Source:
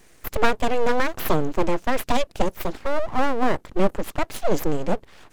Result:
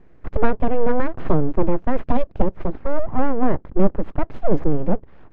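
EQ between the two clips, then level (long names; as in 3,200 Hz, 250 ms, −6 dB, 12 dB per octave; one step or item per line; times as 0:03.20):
low-pass filter 1,600 Hz 12 dB per octave
low-shelf EQ 440 Hz +11 dB
−4.0 dB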